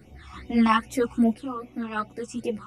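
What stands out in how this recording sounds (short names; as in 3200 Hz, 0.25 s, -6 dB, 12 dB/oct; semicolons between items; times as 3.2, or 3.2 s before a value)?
phasing stages 8, 2.5 Hz, lowest notch 530–1400 Hz; random-step tremolo 3 Hz, depth 55%; a shimmering, thickened sound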